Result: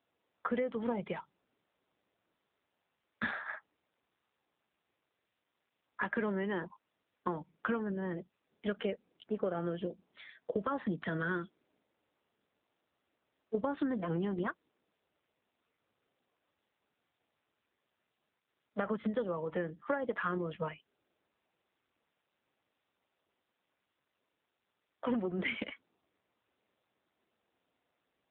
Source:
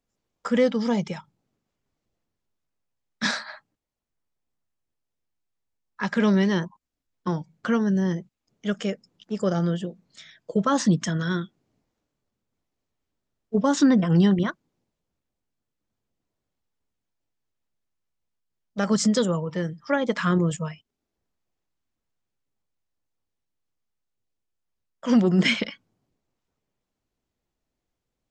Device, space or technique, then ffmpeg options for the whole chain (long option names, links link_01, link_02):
voicemail: -af "highpass=310,lowpass=2700,acompressor=threshold=-31dB:ratio=12,volume=1.5dB" -ar 8000 -c:a libopencore_amrnb -b:a 7400